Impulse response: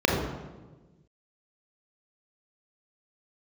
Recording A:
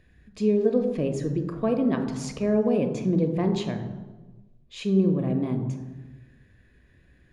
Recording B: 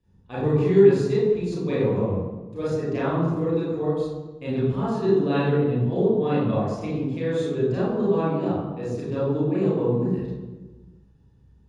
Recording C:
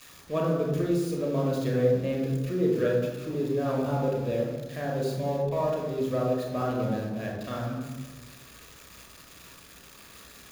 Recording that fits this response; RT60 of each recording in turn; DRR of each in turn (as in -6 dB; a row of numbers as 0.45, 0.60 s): C; 1.3, 1.3, 1.3 s; 5.5, -10.0, -2.5 dB